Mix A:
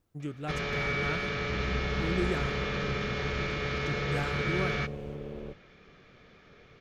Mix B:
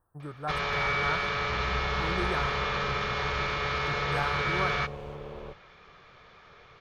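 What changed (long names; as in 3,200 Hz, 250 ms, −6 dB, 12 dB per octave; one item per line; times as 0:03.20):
speech: add linear-phase brick-wall band-stop 1,900–7,900 Hz
master: add octave-band graphic EQ 250/1,000/4,000 Hz −9/+11/+4 dB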